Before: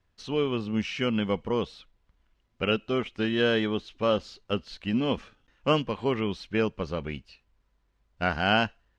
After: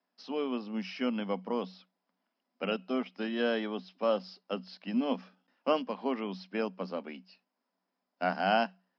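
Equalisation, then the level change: rippled Chebyshev high-pass 180 Hz, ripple 9 dB; resonant low-pass 5.1 kHz, resonance Q 13; tone controls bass +1 dB, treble -15 dB; 0.0 dB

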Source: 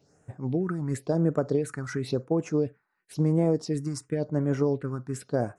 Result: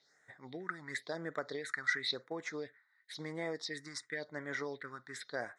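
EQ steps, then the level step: two resonant band-passes 2.7 kHz, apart 0.92 oct; +12.0 dB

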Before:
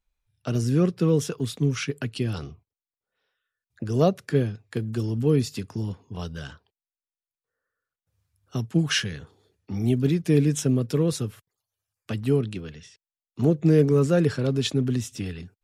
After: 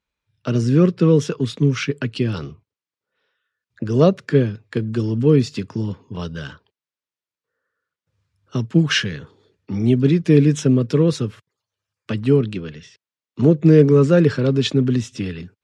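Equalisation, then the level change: high-pass 110 Hz; distance through air 100 m; peaking EQ 740 Hz -10.5 dB 0.21 oct; +7.5 dB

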